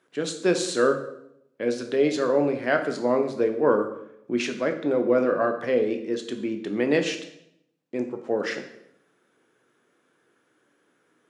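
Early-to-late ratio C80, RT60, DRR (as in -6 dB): 12.5 dB, 0.75 s, 5.0 dB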